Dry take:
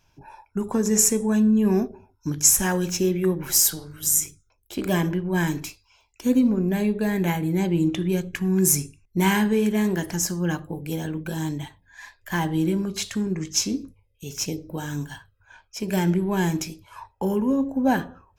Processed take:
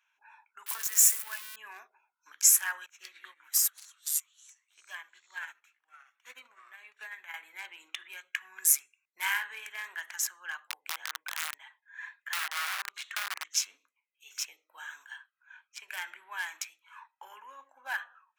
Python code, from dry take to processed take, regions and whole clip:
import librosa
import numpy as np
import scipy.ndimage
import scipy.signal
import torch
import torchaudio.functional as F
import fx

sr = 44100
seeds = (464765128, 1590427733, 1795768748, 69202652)

y = fx.chain(x, sr, fx.crossing_spikes(level_db=-19.5),
    fx.notch(hz=420.0, q=13.0), at=(0.66, 1.56))
y = fx.chain(y, sr, fx.echo_pitch(ms=87, semitones=-3, count=3, db_per_echo=-6.0),
    fx.upward_expand(threshold_db=-29.0, expansion=2.5), at=(2.86, 7.34))
y = fx.chain(y, sr, fx.high_shelf(hz=2700.0, db=-10.0),
    fx.overflow_wrap(gain_db=21.5),
    fx.band_squash(depth_pct=40), at=(10.69, 13.5))
y = fx.wiener(y, sr, points=9)
y = scipy.signal.sosfilt(scipy.signal.butter(4, 1300.0, 'highpass', fs=sr, output='sos'), y)
y = fx.dynamic_eq(y, sr, hz=5200.0, q=0.78, threshold_db=-37.0, ratio=4.0, max_db=-6)